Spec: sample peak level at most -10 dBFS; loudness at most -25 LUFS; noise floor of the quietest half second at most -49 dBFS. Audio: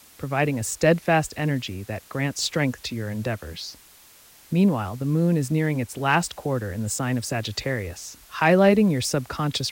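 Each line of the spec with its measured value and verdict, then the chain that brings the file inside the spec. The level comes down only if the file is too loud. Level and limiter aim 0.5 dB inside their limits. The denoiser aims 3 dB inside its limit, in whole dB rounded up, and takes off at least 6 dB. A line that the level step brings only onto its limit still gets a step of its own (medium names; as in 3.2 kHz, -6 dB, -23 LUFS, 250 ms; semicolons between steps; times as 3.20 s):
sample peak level -7.0 dBFS: fail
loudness -23.5 LUFS: fail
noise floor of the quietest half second -51 dBFS: pass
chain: trim -2 dB; peak limiter -10.5 dBFS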